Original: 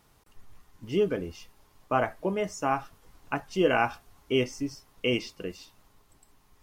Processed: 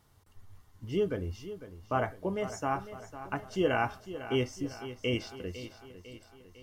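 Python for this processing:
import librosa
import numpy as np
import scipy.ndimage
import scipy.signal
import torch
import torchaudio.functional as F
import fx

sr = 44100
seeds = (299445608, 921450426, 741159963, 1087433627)

p1 = fx.peak_eq(x, sr, hz=92.0, db=14.5, octaves=0.57)
p2 = fx.notch(p1, sr, hz=2500.0, q=10.0)
p3 = p2 + fx.echo_feedback(p2, sr, ms=502, feedback_pct=54, wet_db=-13, dry=0)
y = p3 * librosa.db_to_amplitude(-4.5)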